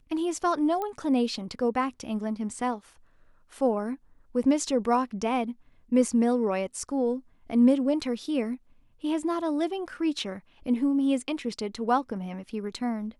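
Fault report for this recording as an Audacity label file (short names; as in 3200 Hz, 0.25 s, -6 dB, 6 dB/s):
0.820000	0.820000	pop -20 dBFS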